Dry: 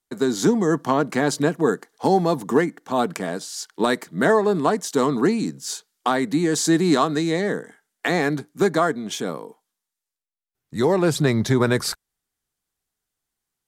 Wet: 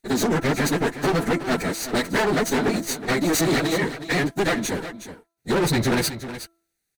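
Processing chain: minimum comb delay 0.48 ms; plain phase-vocoder stretch 0.51×; low shelf 390 Hz -4 dB; notch 1100 Hz, Q 11; de-hum 334.9 Hz, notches 4; hard clip -26 dBFS, distortion -8 dB; echo 0.367 s -12 dB; gain +8.5 dB

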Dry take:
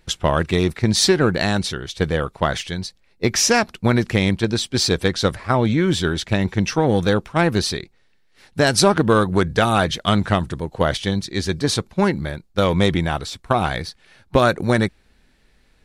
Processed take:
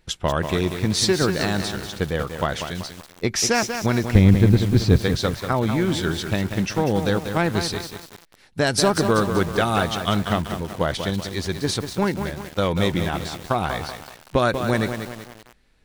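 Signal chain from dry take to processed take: 4.15–4.98 RIAA curve playback; lo-fi delay 0.19 s, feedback 55%, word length 5-bit, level -7 dB; gain -4 dB

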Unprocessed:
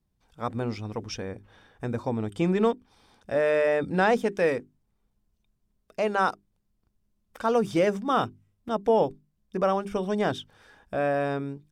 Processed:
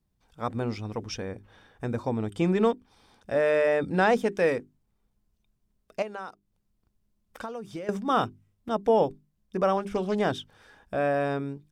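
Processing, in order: 6.02–7.89 compressor 12:1, threshold -34 dBFS, peak gain reduction 16.5 dB; 9.77–10.2 Doppler distortion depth 0.18 ms

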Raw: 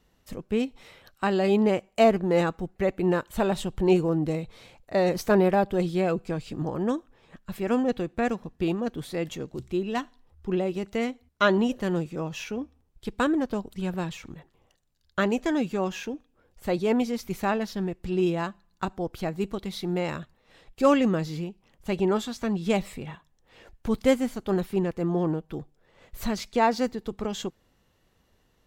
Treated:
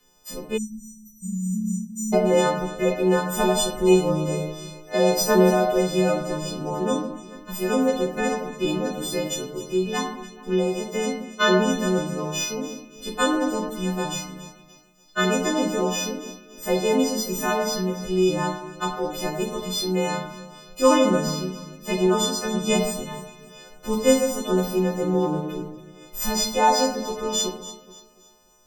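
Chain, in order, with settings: frequency quantiser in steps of 3 st; bell 74 Hz -14 dB 1.3 oct; echo with dull and thin repeats by turns 0.143 s, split 1900 Hz, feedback 59%, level -10 dB; shoebox room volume 75 m³, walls mixed, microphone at 0.73 m; spectral delete 0.57–2.13, 220–5600 Hz

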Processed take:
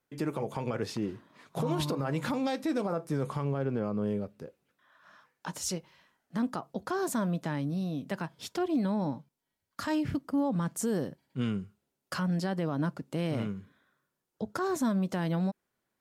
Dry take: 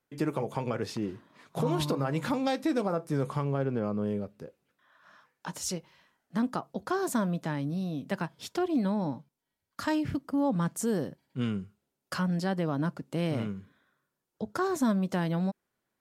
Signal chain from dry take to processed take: limiter -21.5 dBFS, peak gain reduction 5 dB

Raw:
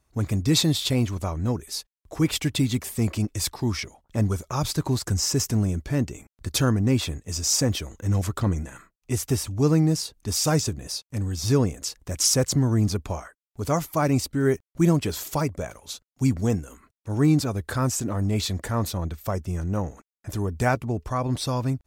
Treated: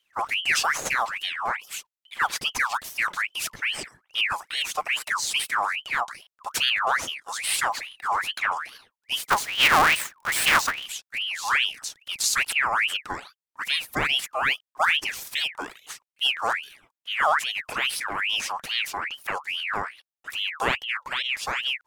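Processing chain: 9.3–10.86 half-waves squared off; ring modulator with a swept carrier 2000 Hz, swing 55%, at 2.4 Hz

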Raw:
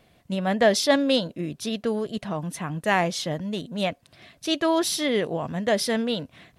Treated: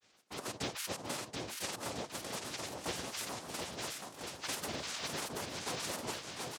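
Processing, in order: de-esser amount 50%; HPF 1500 Hz 6 dB/oct; compressor 6:1, threshold -35 dBFS, peak gain reduction 14 dB; noise vocoder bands 2; grains, spray 13 ms, pitch spread up and down by 7 st; bouncing-ball echo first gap 0.73 s, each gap 0.85×, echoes 5; gain -1 dB

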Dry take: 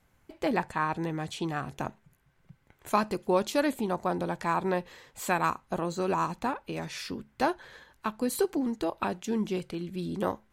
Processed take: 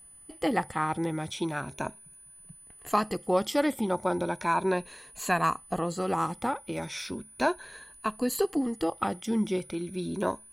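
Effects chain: moving spectral ripple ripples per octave 1.5, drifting +0.36 Hz, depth 11 dB; whine 9900 Hz -50 dBFS

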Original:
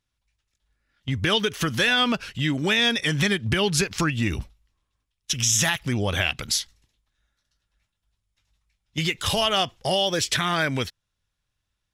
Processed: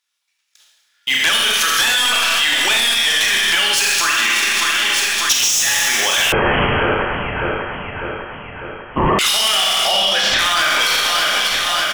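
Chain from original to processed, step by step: HPF 580 Hz 12 dB/oct; gate with hold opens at -58 dBFS; tilt shelf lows -9.5 dB, about 750 Hz; short-mantissa float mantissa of 2-bit; in parallel at -7.5 dB: sine folder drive 12 dB, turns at -2 dBFS; 9.72–10.39 on the sum: air absorption 180 m; on a send: feedback echo 0.599 s, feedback 58%, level -15 dB; on the sum: Schroeder reverb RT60 1.3 s, combs from 27 ms, DRR -1.5 dB; 6.32–9.19 inverted band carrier 3200 Hz; maximiser +15.5 dB; gain -6.5 dB

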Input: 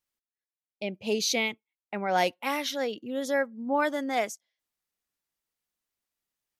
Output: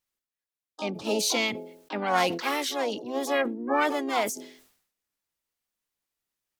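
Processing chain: de-hum 85.05 Hz, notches 5; harmoniser +4 st -11 dB, +7 st -7 dB, +12 st -12 dB; sustainer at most 85 dB/s

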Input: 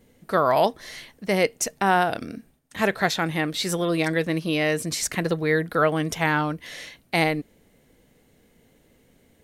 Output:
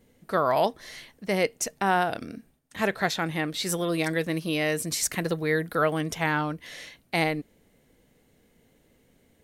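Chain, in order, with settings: 3.66–6.01 high shelf 8300 Hz +8.5 dB; gain -3.5 dB

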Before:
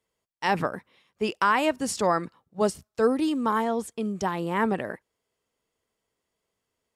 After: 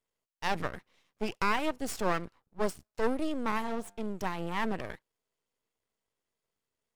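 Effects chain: 3.46–4.1 de-hum 99.63 Hz, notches 9; half-wave rectifier; gain -3 dB

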